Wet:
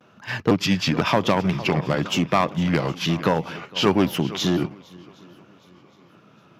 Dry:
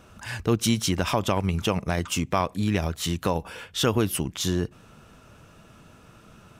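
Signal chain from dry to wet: pitch shift switched off and on -3 st, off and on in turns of 508 ms; boxcar filter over 5 samples; vibrato 0.57 Hz 43 cents; on a send: shuffle delay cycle 763 ms, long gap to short 1.5:1, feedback 39%, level -17.5 dB; on the sum: one-sided clip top -19 dBFS; high-pass 130 Hz 24 dB/octave; gate -38 dBFS, range -8 dB; trim +7 dB

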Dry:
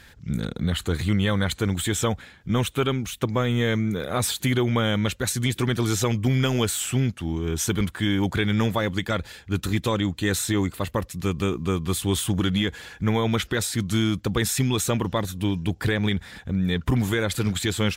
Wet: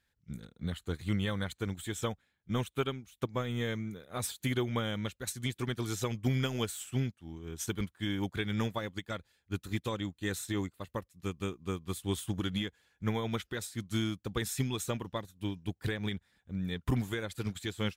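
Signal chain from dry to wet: treble shelf 5.6 kHz +3.5 dB; upward expansion 2.5:1, over -34 dBFS; trim -6.5 dB

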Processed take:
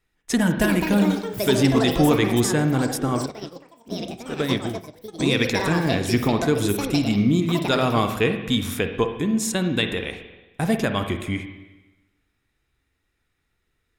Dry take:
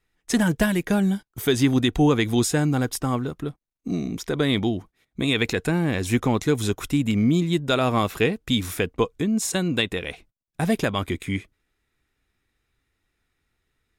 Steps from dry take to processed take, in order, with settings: spring tank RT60 1.1 s, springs 44/59 ms, chirp 60 ms, DRR 6.5 dB; ever faster or slower copies 415 ms, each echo +7 st, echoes 2, each echo -6 dB; 3.26–5.20 s: upward expansion 2.5:1, over -30 dBFS

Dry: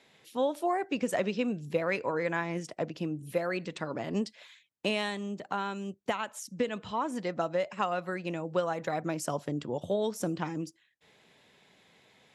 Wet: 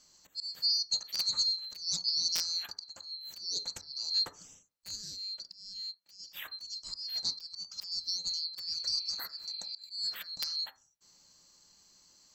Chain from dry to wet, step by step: split-band scrambler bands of 4 kHz; 8.82–9.81 s: spectral replace 2.1–4.5 kHz; integer overflow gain 17.5 dB; 4.95–6.27 s: compression 6:1, threshold -37 dBFS, peak gain reduction 11.5 dB; slow attack 249 ms; reverberation RT60 0.35 s, pre-delay 3 ms, DRR 7.5 dB; loudspeaker Doppler distortion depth 0.17 ms

